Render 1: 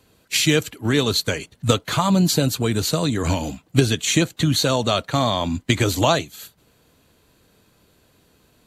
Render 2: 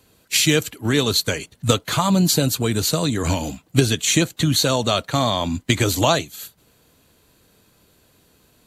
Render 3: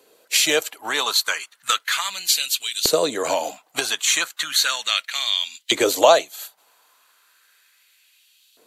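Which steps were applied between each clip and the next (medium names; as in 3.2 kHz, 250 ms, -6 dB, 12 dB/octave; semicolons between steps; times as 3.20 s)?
treble shelf 6 kHz +5.5 dB
LFO high-pass saw up 0.35 Hz 420–3500 Hz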